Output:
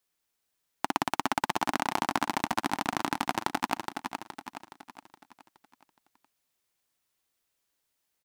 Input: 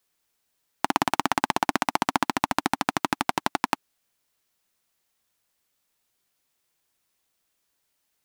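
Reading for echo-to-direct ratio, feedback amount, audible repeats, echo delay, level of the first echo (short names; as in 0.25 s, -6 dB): -5.0 dB, 47%, 5, 0.419 s, -6.0 dB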